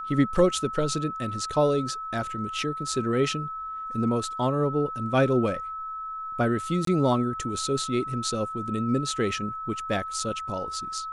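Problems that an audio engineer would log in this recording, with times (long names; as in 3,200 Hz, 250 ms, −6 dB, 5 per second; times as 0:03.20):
whistle 1,300 Hz −32 dBFS
0:06.85–0:06.87: drop-out 23 ms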